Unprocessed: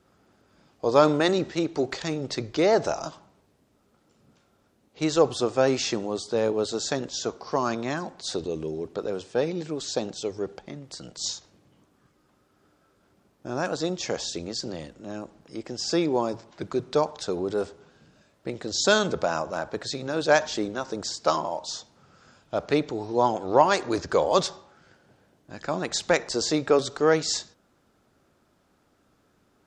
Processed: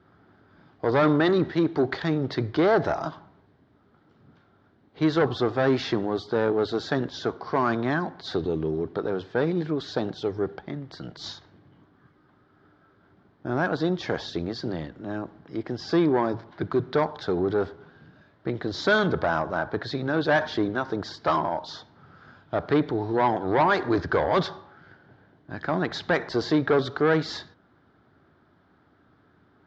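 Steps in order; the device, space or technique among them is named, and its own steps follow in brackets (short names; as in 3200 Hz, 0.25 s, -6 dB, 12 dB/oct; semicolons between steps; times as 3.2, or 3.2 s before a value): guitar amplifier (tube stage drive 19 dB, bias 0.2; tone controls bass +6 dB, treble -6 dB; speaker cabinet 92–4100 Hz, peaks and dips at 140 Hz -3 dB, 210 Hz -6 dB, 530 Hz -6 dB, 1600 Hz +4 dB, 2600 Hz -9 dB); gain +5 dB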